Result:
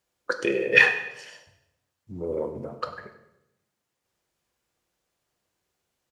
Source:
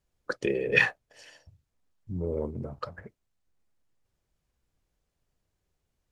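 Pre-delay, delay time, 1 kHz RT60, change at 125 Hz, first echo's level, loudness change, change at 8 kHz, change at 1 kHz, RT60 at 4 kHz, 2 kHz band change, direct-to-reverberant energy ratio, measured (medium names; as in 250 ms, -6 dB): 4 ms, 98 ms, 0.85 s, -5.0 dB, -17.5 dB, +5.5 dB, no reading, +5.5 dB, 0.75 s, +6.5 dB, 6.5 dB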